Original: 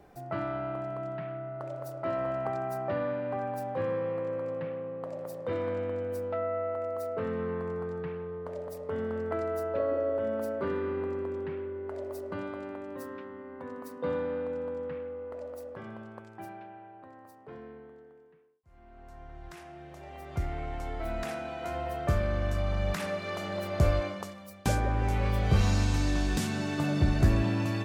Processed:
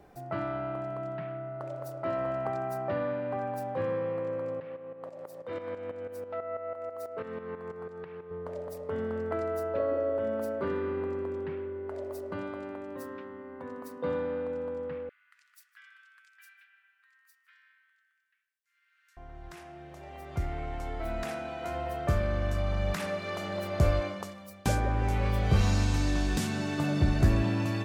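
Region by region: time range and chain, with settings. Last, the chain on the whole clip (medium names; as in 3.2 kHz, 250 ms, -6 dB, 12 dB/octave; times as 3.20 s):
4.60–8.31 s: bass shelf 250 Hz -9.5 dB + tremolo saw up 6.1 Hz, depth 70%
15.09–19.17 s: steep high-pass 1.5 kHz 48 dB/octave + delay 156 ms -20.5 dB
whole clip: none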